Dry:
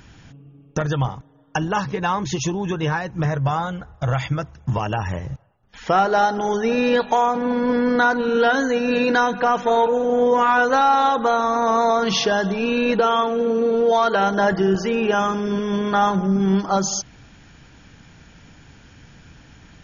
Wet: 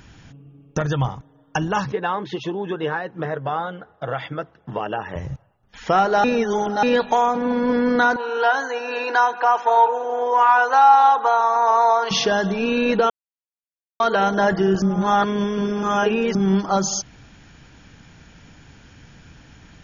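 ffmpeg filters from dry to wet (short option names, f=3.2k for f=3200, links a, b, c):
-filter_complex "[0:a]asettb=1/sr,asplit=3[a][b][c];[a]atrim=end=1.924[d];[b]atrim=start=1.92:end=5.16,asetpts=PTS-STARTPTS,afade=t=in:d=0.004:c=qsin,afade=t=out:st=3.236:d=0.004:c=qsin,highpass=270,equalizer=f=440:t=q:w=4:g=4,equalizer=f=990:t=q:w=4:g=-4,equalizer=f=2.4k:t=q:w=4:g=-8,lowpass=f=3.6k:w=0.5412,lowpass=f=3.6k:w=1.3066[e];[c]atrim=start=5.156[f];[d][e]acrossfade=d=0.004:c1=hsin:c2=qsin[g];[g][f]acrossfade=d=0.004:c1=qsin:c2=hsin,asettb=1/sr,asplit=3[h][i][j];[h]atrim=end=8.164[k];[i]atrim=start=8.16:end=12.11,asetpts=PTS-STARTPTS,afade=t=in:d=0.004:c=qsin,afade=t=out:st=3.946:d=0.004:c=qsin,highpass=f=420:w=0.5412,highpass=f=420:w=1.3066,equalizer=f=530:t=q:w=4:g=-8,equalizer=f=880:t=q:w=4:g=8,equalizer=f=2.1k:t=q:w=4:g=-4,equalizer=f=3.6k:t=q:w=4:g=-7,lowpass=f=5.9k:w=0.5412,lowpass=f=5.9k:w=1.3066[l];[j]atrim=start=12.106[m];[k][l]acrossfade=d=0.004:c1=hsin:c2=qsin[n];[n][m]acrossfade=d=0.004:c1=qsin:c2=hsin,asplit=7[o][p][q][r][s][t][u];[o]atrim=end=6.242[v];[p]atrim=start=6.238:end=6.832,asetpts=PTS-STARTPTS,areverse[w];[q]atrim=start=6.828:end=13.1,asetpts=PTS-STARTPTS,afade=t=out:st=6.268:d=0.004:c=hsin[x];[r]atrim=start=13.1:end=14,asetpts=PTS-STARTPTS,volume=0[y];[s]atrim=start=14:end=14.822,asetpts=PTS-STARTPTS,afade=t=in:d=0.004:c=hsin[z];[t]atrim=start=14.818:end=16.352,asetpts=PTS-STARTPTS,areverse[aa];[u]atrim=start=16.348[ab];[v][w]acrossfade=d=0.004:c1=hsin:c2=hsin[ac];[x][y][z]concat=n=3:v=0:a=1[ad];[ac][ad]acrossfade=d=0.004:c1=hsin:c2=hsin[ae];[ae][aa]acrossfade=d=0.004:c1=hsin:c2=hsin[af];[af][ab]acrossfade=d=0.004:c1=hsin:c2=hsin"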